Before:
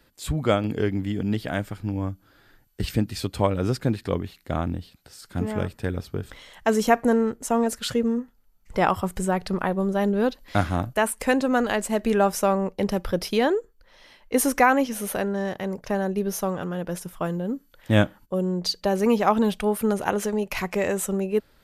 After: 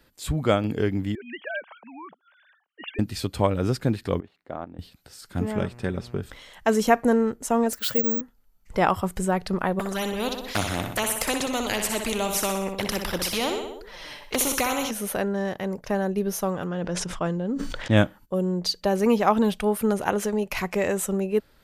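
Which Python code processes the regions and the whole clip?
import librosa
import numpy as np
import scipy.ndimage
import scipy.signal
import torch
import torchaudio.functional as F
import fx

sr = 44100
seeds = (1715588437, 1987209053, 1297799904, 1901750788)

y = fx.chain(x, sr, fx.sine_speech(),
    fx.highpass(hz=780.0, slope=12),
    fx.transformer_sat(knee_hz=170.0), at=(1.15, 2.99))
y = fx.chain(y, sr, fx.bandpass_q(hz=670.0, q=0.74),
    fx.level_steps(step_db=11), at=(4.2, 4.79))
y = fx.lowpass(y, sr, hz=9300.0, slope=12, at=(5.55, 6.2), fade=0.02)
y = fx.comb(y, sr, ms=5.2, depth=0.38, at=(5.55, 6.2), fade=0.02)
y = fx.dmg_buzz(y, sr, base_hz=120.0, harmonics=23, level_db=-46.0, tilt_db=-7, odd_only=False, at=(5.55, 6.2), fade=0.02)
y = fx.chain(y, sr, fx.low_shelf(hz=260.0, db=-9.0),
    fx.resample_bad(factor=2, down='filtered', up='zero_stuff'), at=(7.73, 8.21))
y = fx.chain(y, sr, fx.env_flanger(rest_ms=7.8, full_db=-18.5),
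    fx.echo_feedback(ms=62, feedback_pct=49, wet_db=-10.0),
    fx.spectral_comp(ratio=2.0), at=(9.79, 14.91))
y = fx.chain(y, sr, fx.lowpass(hz=7300.0, slope=24),
    fx.sustainer(db_per_s=30.0), at=(16.67, 17.97))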